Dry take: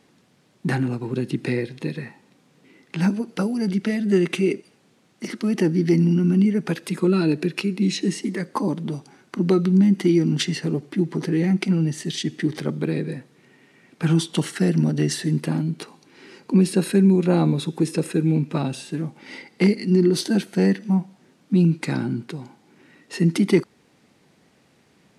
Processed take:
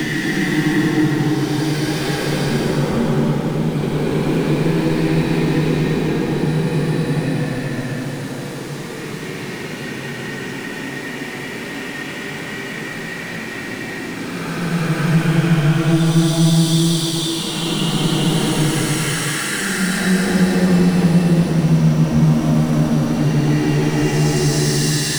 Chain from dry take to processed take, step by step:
power curve on the samples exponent 0.5
extreme stretch with random phases 9×, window 0.25 s, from 0:12.35
multiband upward and downward compressor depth 40%
level −1.5 dB

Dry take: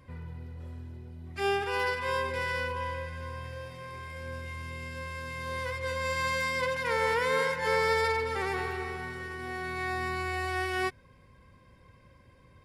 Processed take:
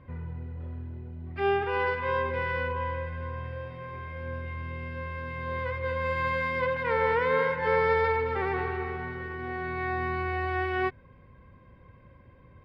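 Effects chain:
high-frequency loss of the air 460 metres
level +4.5 dB

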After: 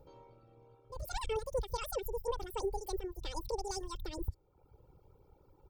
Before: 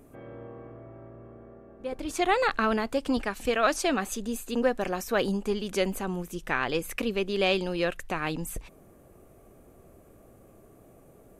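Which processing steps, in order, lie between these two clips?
guitar amp tone stack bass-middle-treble 10-0-1
comb filter 4.4 ms, depth 89%
reverb reduction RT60 1.5 s
low-shelf EQ 62 Hz −6.5 dB
wrong playback speed 7.5 ips tape played at 15 ips
level +8.5 dB

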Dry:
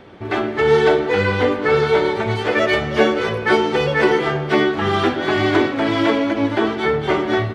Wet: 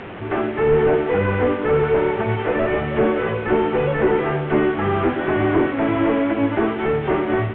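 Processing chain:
linear delta modulator 16 kbit/s, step −27 dBFS
high-frequency loss of the air 170 metres

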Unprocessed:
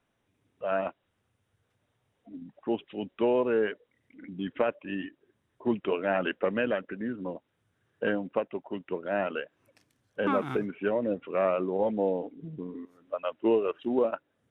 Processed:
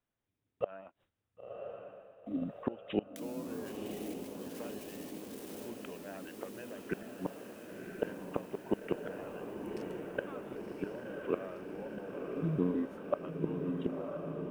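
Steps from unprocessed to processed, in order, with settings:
0:03.16–0:05.70: spike at every zero crossing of −20.5 dBFS
noise gate with hold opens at −59 dBFS
low-shelf EQ 97 Hz +6 dB
gate with flip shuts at −25 dBFS, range −27 dB
feedback delay with all-pass diffusion 1,032 ms, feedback 69%, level −4 dB
level +6.5 dB

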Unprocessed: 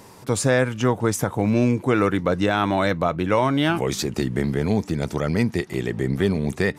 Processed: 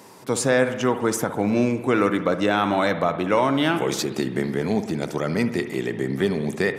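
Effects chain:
high-pass filter 180 Hz 12 dB per octave
spring reverb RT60 1.1 s, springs 59 ms, chirp 80 ms, DRR 9.5 dB

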